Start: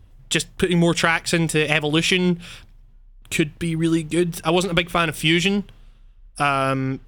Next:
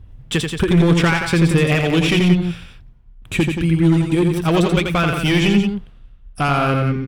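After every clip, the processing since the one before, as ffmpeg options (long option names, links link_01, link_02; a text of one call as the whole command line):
ffmpeg -i in.wav -af "asoftclip=type=hard:threshold=-15.5dB,bass=frequency=250:gain=6,treble=frequency=4000:gain=-8,aecho=1:1:84.55|177.8:0.562|0.398,volume=2dB" out.wav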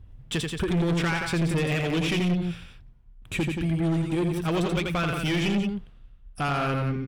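ffmpeg -i in.wav -af "asoftclip=type=tanh:threshold=-13.5dB,volume=-6.5dB" out.wav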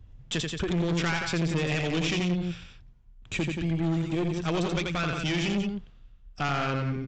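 ffmpeg -i in.wav -filter_complex "[0:a]acrossover=split=210[link_01][link_02];[link_02]crystalizer=i=1.5:c=0[link_03];[link_01][link_03]amix=inputs=2:normalize=0,aeval=exprs='(tanh(6.31*val(0)+0.55)-tanh(0.55))/6.31':channel_layout=same,aresample=16000,aresample=44100" out.wav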